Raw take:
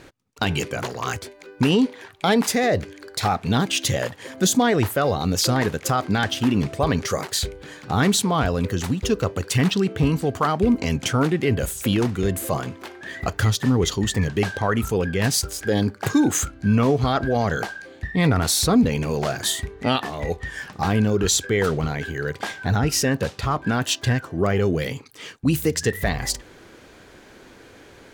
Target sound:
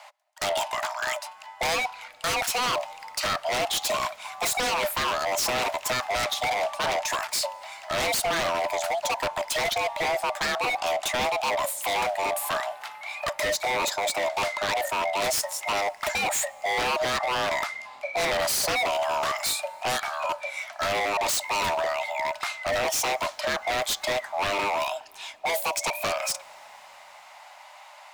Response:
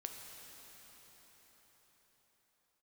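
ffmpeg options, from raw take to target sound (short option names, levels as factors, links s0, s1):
-filter_complex "[0:a]highpass=76,afreqshift=500,aeval=exprs='0.106*(abs(mod(val(0)/0.106+3,4)-2)-1)':c=same,asplit=2[s0][s1];[1:a]atrim=start_sample=2205[s2];[s1][s2]afir=irnorm=-1:irlink=0,volume=0.126[s3];[s0][s3]amix=inputs=2:normalize=0,volume=0.841"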